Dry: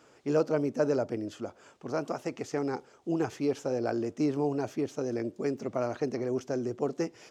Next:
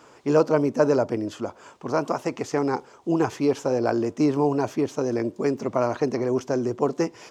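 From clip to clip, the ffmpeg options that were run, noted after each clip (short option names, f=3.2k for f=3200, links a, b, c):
-af "equalizer=f=1k:w=4.1:g=8.5,volume=7dB"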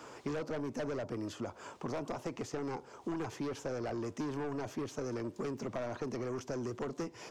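-filter_complex "[0:a]asoftclip=type=tanh:threshold=-22dB,acrossover=split=130|970[a][b][c];[a]acompressor=threshold=-49dB:ratio=4[d];[b]acompressor=threshold=-40dB:ratio=4[e];[c]acompressor=threshold=-50dB:ratio=4[f];[d][e][f]amix=inputs=3:normalize=0,volume=1dB"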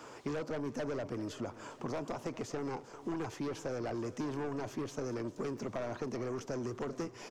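-af "aecho=1:1:398|796|1194|1592|1990:0.141|0.0763|0.0412|0.0222|0.012"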